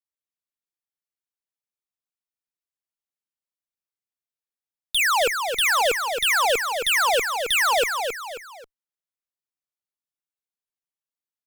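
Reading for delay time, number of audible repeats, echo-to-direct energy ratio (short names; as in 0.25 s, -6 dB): 0.269 s, 3, -5.5 dB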